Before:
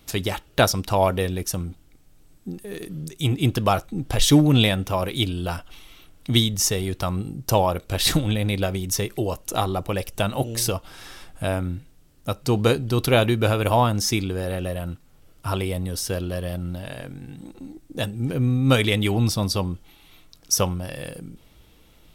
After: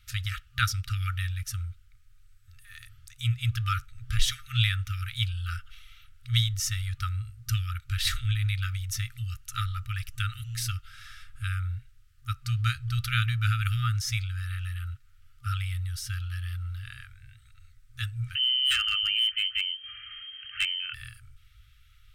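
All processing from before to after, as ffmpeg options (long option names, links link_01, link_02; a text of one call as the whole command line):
ffmpeg -i in.wav -filter_complex "[0:a]asettb=1/sr,asplit=3[link_01][link_02][link_03];[link_01]atrim=end=18.354[link_04];[link_02]atrim=start=18.35:end=20.94,asetpts=PTS-STARTPTS,afade=type=in:duration=0.004:curve=qsin,afade=type=out:start_time=2.586:duration=0.004:curve=qsin,lowpass=frequency=2700:width_type=q:width=0.5098,lowpass=frequency=2700:width_type=q:width=0.6013,lowpass=frequency=2700:width_type=q:width=0.9,lowpass=frequency=2700:width_type=q:width=2.563,afreqshift=-3200,aeval=exprs='0.224*(abs(mod(val(0)/0.224+3,4)-2)-1)':channel_layout=same,acompressor=mode=upward:threshold=-23dB:ratio=2.5:attack=3.2:release=140:knee=2.83:detection=peak[link_05];[link_03]atrim=start=20.936[link_06];[link_04][link_05]acrossfade=duration=0.004:curve1=hsin:curve2=qsin[link_07];[link_07][link_06]acrossfade=duration=0.004:curve1=qsin:curve2=hsin,afftfilt=real='re*(1-between(b*sr/4096,120,1200))':imag='im*(1-between(b*sr/4096,120,1200))':win_size=4096:overlap=0.75,highshelf=frequency=3800:gain=-10,volume=-1.5dB" out.wav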